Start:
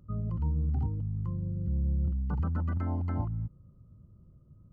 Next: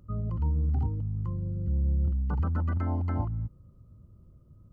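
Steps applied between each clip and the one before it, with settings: bell 160 Hz -5 dB 0.92 oct; gain +3.5 dB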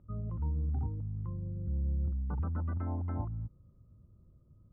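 LPF 1500 Hz 12 dB/oct; gain -6 dB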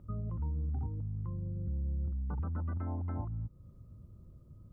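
compressor 2:1, threshold -46 dBFS, peak gain reduction 9.5 dB; gain +6.5 dB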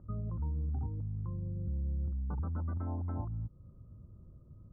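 LPF 1500 Hz 24 dB/oct

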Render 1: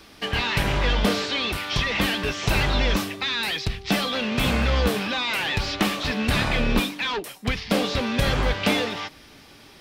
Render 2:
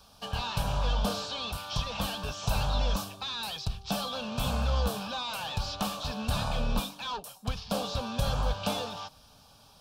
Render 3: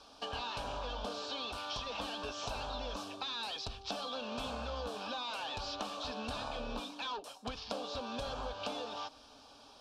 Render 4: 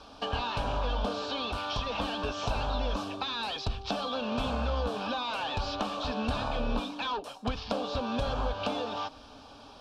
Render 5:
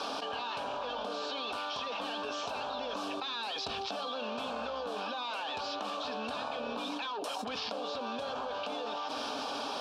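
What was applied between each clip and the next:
fixed phaser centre 830 Hz, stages 4; gain -4.5 dB
LPF 6000 Hz 12 dB/oct; resonant low shelf 220 Hz -9.5 dB, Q 3; compressor, threshold -38 dBFS, peak gain reduction 11.5 dB; gain +1 dB
tone controls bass +6 dB, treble -8 dB; gain +7.5 dB
HPF 320 Hz 12 dB/oct; fast leveller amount 100%; gain -8.5 dB

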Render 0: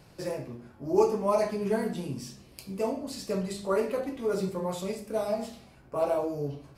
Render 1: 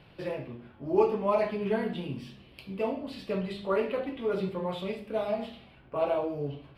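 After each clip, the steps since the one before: resonant high shelf 4600 Hz -13.5 dB, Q 3; gain -1 dB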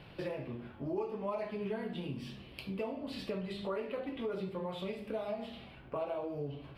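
compressor 4:1, threshold -39 dBFS, peak gain reduction 17 dB; gain +2.5 dB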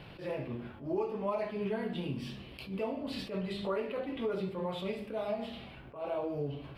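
attack slew limiter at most 140 dB/s; gain +3.5 dB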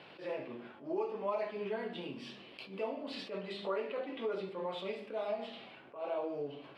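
BPF 320–6400 Hz; gain -1 dB

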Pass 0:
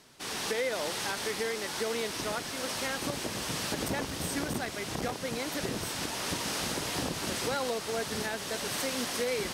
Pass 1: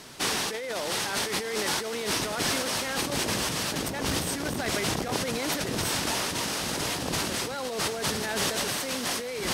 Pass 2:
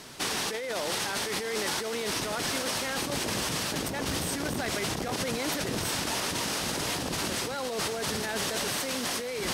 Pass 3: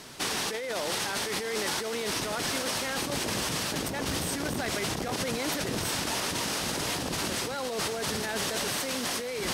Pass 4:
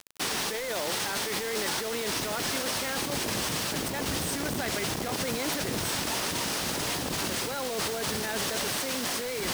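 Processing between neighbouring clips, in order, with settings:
negative-ratio compressor -38 dBFS, ratio -1; gain +8 dB
limiter -20.5 dBFS, peak gain reduction 7 dB
nothing audible
bit-crush 6-bit

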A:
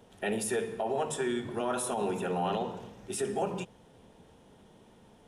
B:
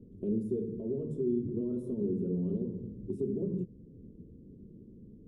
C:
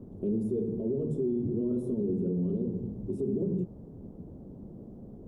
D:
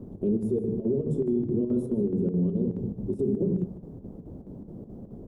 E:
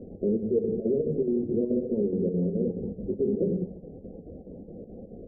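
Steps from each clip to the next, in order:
inverse Chebyshev low-pass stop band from 720 Hz, stop band 40 dB; in parallel at +1 dB: compressor, threshold -44 dBFS, peak gain reduction 13 dB; on the sum: gain +2 dB
limiter -28 dBFS, peak gain reduction 6.5 dB; band noise 35–560 Hz -61 dBFS; gain +5.5 dB
chopper 4.7 Hz, depth 60%, duty 75%; echo 0.153 s -16 dB; gain +4.5 dB
loudest bins only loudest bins 32; downsampling 16000 Hz; thirty-one-band EQ 125 Hz -10 dB, 500 Hz +11 dB, 800 Hz +7 dB; gain -1.5 dB

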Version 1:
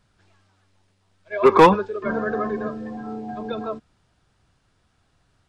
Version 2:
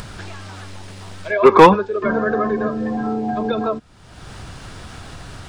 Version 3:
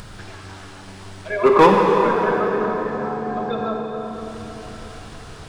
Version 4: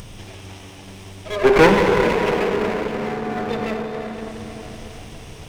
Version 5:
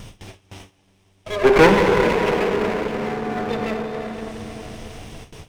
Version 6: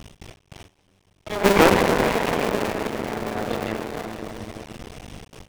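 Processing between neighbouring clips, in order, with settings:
upward compressor, threshold -18 dBFS; gain +4 dB
reverb RT60 4.5 s, pre-delay 7 ms, DRR -0.5 dB; gain -5 dB
minimum comb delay 0.33 ms; gain +1 dB
gate with hold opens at -27 dBFS
cycle switcher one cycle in 2, muted

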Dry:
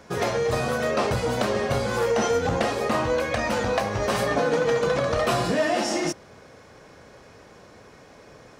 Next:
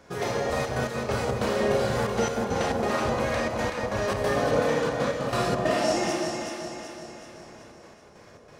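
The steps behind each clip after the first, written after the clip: Schroeder reverb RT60 0.98 s, combs from 27 ms, DRR 0.5 dB; step gate "xxxxxx.x..xx." 138 bpm -12 dB; echo with dull and thin repeats by turns 0.189 s, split 1100 Hz, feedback 72%, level -2 dB; gain -5.5 dB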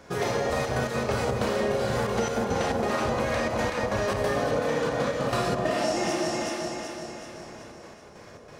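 compressor, threshold -26 dBFS, peak gain reduction 8 dB; gain +3.5 dB

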